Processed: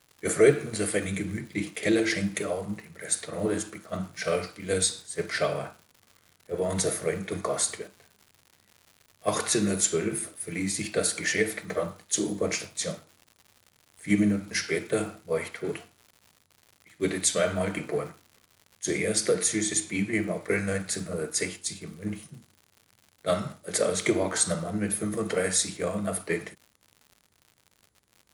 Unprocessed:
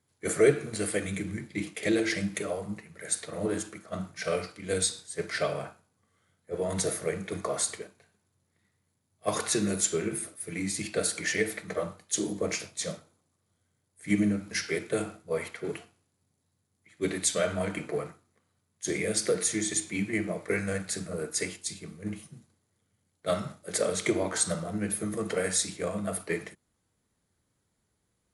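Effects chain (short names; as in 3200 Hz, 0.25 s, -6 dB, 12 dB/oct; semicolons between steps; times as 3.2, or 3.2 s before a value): crackle 180/s -44 dBFS, from 18.85 s 26/s, from 20.18 s 110/s; gain +2.5 dB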